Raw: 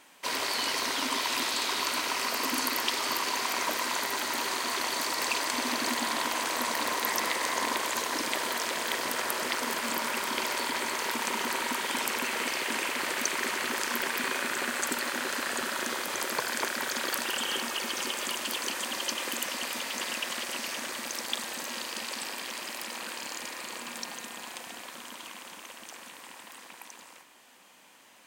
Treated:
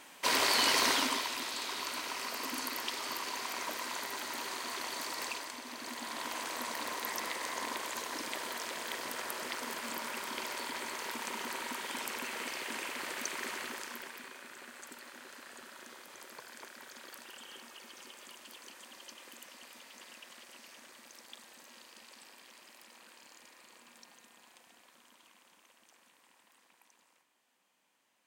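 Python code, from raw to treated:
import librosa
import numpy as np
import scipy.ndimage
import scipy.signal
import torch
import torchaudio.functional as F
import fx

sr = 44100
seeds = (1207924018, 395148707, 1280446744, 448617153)

y = fx.gain(x, sr, db=fx.line((0.91, 2.5), (1.35, -8.5), (5.24, -8.5), (5.63, -16.0), (6.32, -8.5), (13.57, -8.5), (14.33, -19.0)))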